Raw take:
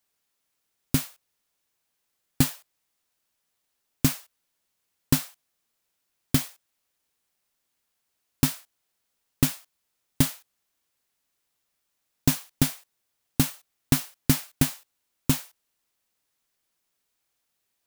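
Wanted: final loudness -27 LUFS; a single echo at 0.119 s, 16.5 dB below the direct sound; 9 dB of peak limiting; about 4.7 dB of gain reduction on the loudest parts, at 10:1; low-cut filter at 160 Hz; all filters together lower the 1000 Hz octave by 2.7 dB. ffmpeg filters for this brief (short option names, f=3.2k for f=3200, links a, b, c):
-af "highpass=160,equalizer=f=1k:t=o:g=-3.5,acompressor=threshold=-22dB:ratio=10,alimiter=limit=-17dB:level=0:latency=1,aecho=1:1:119:0.15,volume=10dB"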